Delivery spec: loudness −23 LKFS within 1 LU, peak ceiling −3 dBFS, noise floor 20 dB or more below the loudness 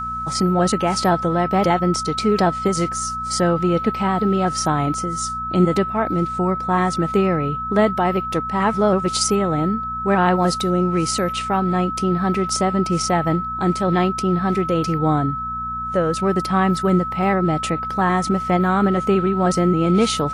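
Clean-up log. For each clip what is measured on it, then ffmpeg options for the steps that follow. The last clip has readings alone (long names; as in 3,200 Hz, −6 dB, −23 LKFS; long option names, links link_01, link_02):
mains hum 60 Hz; hum harmonics up to 240 Hz; level of the hum −34 dBFS; interfering tone 1,300 Hz; level of the tone −24 dBFS; integrated loudness −19.5 LKFS; sample peak −5.5 dBFS; target loudness −23.0 LKFS
→ -af "bandreject=frequency=60:width_type=h:width=4,bandreject=frequency=120:width_type=h:width=4,bandreject=frequency=180:width_type=h:width=4,bandreject=frequency=240:width_type=h:width=4"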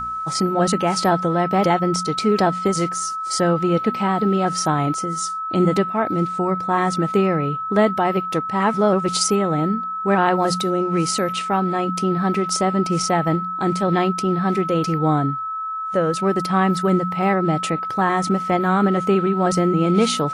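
mains hum none found; interfering tone 1,300 Hz; level of the tone −24 dBFS
→ -af "bandreject=frequency=1300:width=30"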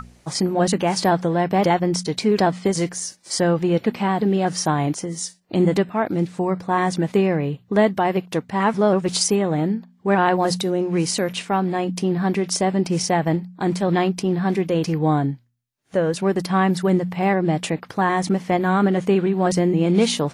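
interfering tone none found; integrated loudness −21.0 LKFS; sample peak −6.5 dBFS; target loudness −23.0 LKFS
→ -af "volume=-2dB"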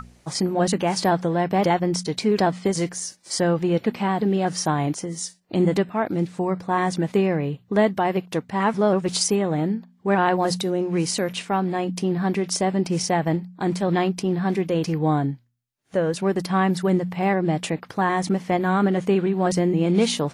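integrated loudness −23.0 LKFS; sample peak −8.5 dBFS; background noise floor −57 dBFS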